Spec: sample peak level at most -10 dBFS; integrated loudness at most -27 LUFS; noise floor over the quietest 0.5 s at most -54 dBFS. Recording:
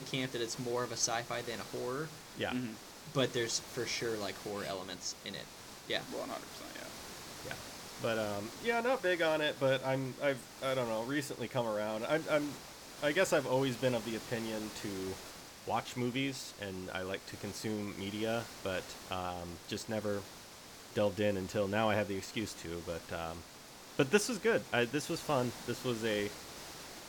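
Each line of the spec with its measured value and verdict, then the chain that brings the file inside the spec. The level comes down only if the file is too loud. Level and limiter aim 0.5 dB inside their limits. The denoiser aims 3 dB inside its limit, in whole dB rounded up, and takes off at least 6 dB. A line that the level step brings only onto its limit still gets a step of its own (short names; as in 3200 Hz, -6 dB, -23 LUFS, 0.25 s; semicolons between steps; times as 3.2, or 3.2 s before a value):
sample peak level -14.5 dBFS: OK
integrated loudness -36.0 LUFS: OK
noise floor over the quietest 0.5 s -53 dBFS: fail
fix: denoiser 6 dB, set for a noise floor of -53 dBFS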